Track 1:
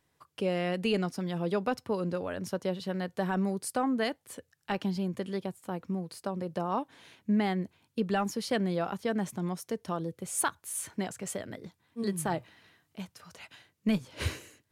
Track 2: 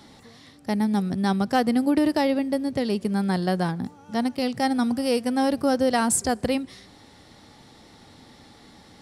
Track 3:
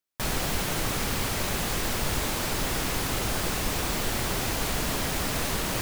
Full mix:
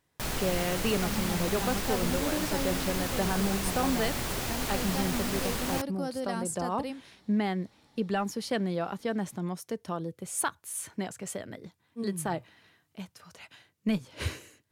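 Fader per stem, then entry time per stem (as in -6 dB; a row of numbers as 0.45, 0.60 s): -0.5, -13.0, -4.5 dB; 0.00, 0.35, 0.00 s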